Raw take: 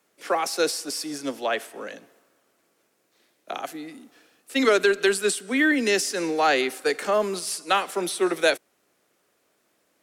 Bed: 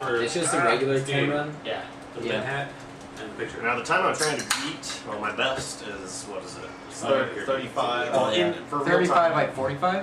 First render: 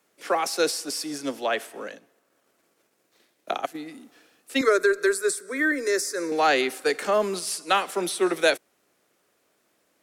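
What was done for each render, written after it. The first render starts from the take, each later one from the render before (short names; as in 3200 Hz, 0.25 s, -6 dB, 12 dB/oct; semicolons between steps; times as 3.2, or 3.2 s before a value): 1.83–3.86 transient shaper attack +6 dB, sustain -7 dB; 4.61–6.32 fixed phaser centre 800 Hz, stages 6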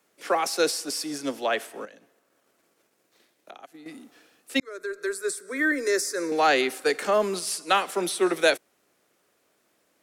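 1.85–3.86 compressor 2.5:1, threshold -49 dBFS; 4.6–5.72 fade in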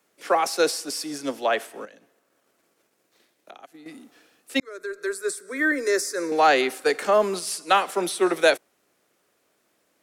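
dynamic EQ 810 Hz, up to +4 dB, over -31 dBFS, Q 0.73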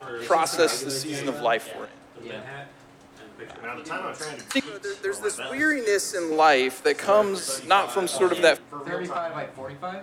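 add bed -9.5 dB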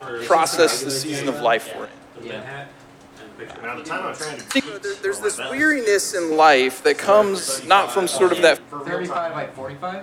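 gain +5 dB; limiter -1 dBFS, peak gain reduction 2.5 dB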